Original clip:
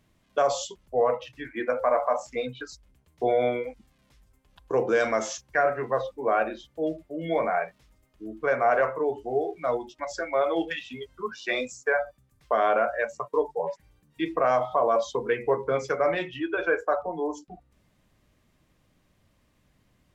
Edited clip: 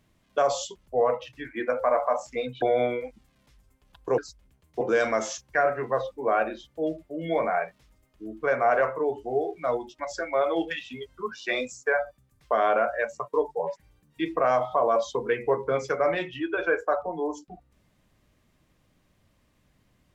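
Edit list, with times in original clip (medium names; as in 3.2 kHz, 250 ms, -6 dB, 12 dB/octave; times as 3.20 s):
2.62–3.25 s: move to 4.81 s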